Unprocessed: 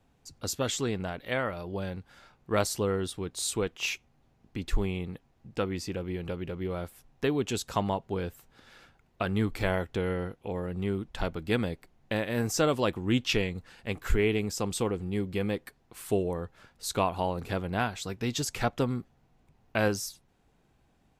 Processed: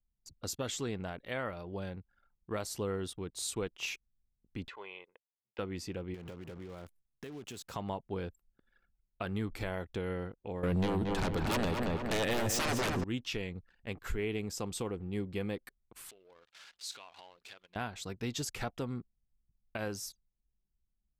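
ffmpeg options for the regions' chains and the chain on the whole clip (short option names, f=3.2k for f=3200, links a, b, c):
-filter_complex "[0:a]asettb=1/sr,asplit=3[a][b][c];[a]atrim=end=4.684[d];[b]atrim=start=4.68:end=5.59,asetpts=PTS-STARTPTS,afade=t=in:d=0.004:c=qsin,afade=t=out:st=0.906:d=0.004:c=qsin,asuperpass=centerf=1500:order=4:qfactor=0.57,aecho=1:1:2:0.45,atrim=end_sample=40131[e];[c]atrim=start=5.586[f];[d][e]acrossfade=d=0.004:c1=hsin:c2=qsin[g];[g][f]acrossfade=d=0.004:c1=qsin:c2=hsin,asettb=1/sr,asplit=3[h][i][j];[h]atrim=end=6.144[k];[i]atrim=start=6.14:end=7.74,asetpts=PTS-STARTPTS,afade=t=in:d=0.004:c=qsin,afade=t=out:st=1.596:d=0.004:c=qsin,highpass=68,acompressor=threshold=-35dB:ratio=20:attack=3.2:release=140:knee=1:detection=peak,acrusher=bits=9:dc=4:mix=0:aa=0.000001[l];[j]atrim=start=7.736[m];[k][l]acrossfade=d=0.004:c1=hsin:c2=qsin[n];[n][m]acrossfade=d=0.004:c1=qsin:c2=hsin,asettb=1/sr,asplit=3[o][p][q];[o]atrim=end=10.634[r];[p]atrim=start=10.63:end=13.04,asetpts=PTS-STARTPTS,afade=t=in:d=0.004:c=qsin,afade=t=out:st=2.406:d=0.004:c=qsin,aeval=exprs='0.224*sin(PI/2*6.31*val(0)/0.224)':c=same,asplit=2[s][t];[t]adelay=228,lowpass=f=2.8k:p=1,volume=-5dB,asplit=2[u][v];[v]adelay=228,lowpass=f=2.8k:p=1,volume=0.46,asplit=2[w][x];[x]adelay=228,lowpass=f=2.8k:p=1,volume=0.46,asplit=2[y][z];[z]adelay=228,lowpass=f=2.8k:p=1,volume=0.46,asplit=2[aa][ab];[ab]adelay=228,lowpass=f=2.8k:p=1,volume=0.46,asplit=2[ac][ad];[ad]adelay=228,lowpass=f=2.8k:p=1,volume=0.46[ae];[s][u][w][y][aa][ac][ae]amix=inputs=7:normalize=0,atrim=end_sample=106281[af];[q]atrim=start=13.036[ag];[r][af]acrossfade=d=0.004:c1=hsin:c2=qsin[ah];[ah][ag]acrossfade=d=0.004:c1=qsin:c2=hsin,asettb=1/sr,asplit=3[ai][aj][ak];[ai]atrim=end=16.094[al];[aj]atrim=start=16.09:end=17.76,asetpts=PTS-STARTPTS,afade=t=in:d=0.004:c=qsin,afade=t=out:st=1.666:d=0.004:c=qsin,aeval=exprs='val(0)+0.5*0.0133*sgn(val(0))':c=same,acompressor=threshold=-28dB:ratio=8:attack=3.2:release=140:knee=1:detection=peak,bandpass=f=4k:t=q:w=0.95[am];[ak]atrim=start=17.756[an];[al][am]acrossfade=d=0.004:c1=hsin:c2=qsin[ao];[ao][an]acrossfade=d=0.004:c1=qsin:c2=hsin,anlmdn=0.01,alimiter=limit=-20dB:level=0:latency=1:release=173,volume=-5.5dB"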